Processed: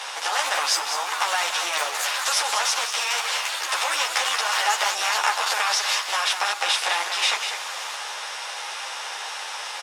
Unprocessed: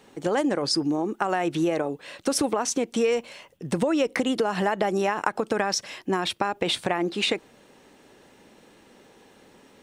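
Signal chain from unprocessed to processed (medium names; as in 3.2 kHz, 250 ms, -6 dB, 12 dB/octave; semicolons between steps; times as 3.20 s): spectral levelling over time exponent 0.4; high-pass 850 Hz 24 dB/octave; treble shelf 11 kHz -5.5 dB; ever faster or slower copies 153 ms, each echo +4 st, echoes 2, each echo -6 dB; on a send: delay 198 ms -8 dB; on the sum: three-phase chorus; trim +3 dB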